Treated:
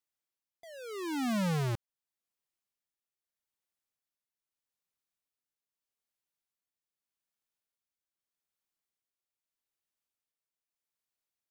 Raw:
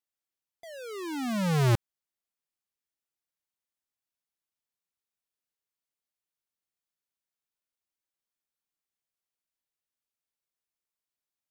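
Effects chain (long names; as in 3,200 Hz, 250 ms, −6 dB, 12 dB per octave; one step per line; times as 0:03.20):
downward compressor, threshold −28 dBFS, peak gain reduction 6.5 dB
amplitude tremolo 0.81 Hz, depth 45%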